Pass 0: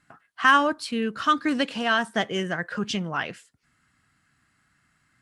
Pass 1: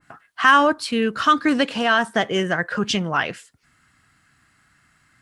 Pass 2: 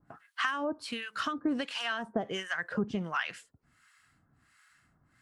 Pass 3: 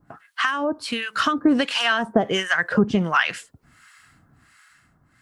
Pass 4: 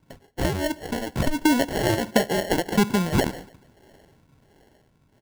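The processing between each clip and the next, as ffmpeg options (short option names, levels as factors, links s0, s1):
-filter_complex "[0:a]equalizer=f=200:t=o:w=1.3:g=-3,asplit=2[s0][s1];[s1]alimiter=limit=0.168:level=0:latency=1,volume=1.41[s2];[s0][s2]amix=inputs=2:normalize=0,adynamicequalizer=threshold=0.0398:dfrequency=1900:dqfactor=0.7:tfrequency=1900:tqfactor=0.7:attack=5:release=100:ratio=0.375:range=2.5:mode=cutabove:tftype=highshelf"
-filter_complex "[0:a]acompressor=threshold=0.0794:ratio=12,acrossover=split=960[s0][s1];[s0]aeval=exprs='val(0)*(1-1/2+1/2*cos(2*PI*1.4*n/s))':c=same[s2];[s1]aeval=exprs='val(0)*(1-1/2-1/2*cos(2*PI*1.4*n/s))':c=same[s3];[s2][s3]amix=inputs=2:normalize=0,volume=0.794"
-af "dynaudnorm=f=220:g=9:m=1.78,volume=2.51"
-af "acrusher=samples=36:mix=1:aa=0.000001,aecho=1:1:144|288|432:0.0708|0.0311|0.0137,volume=0.841"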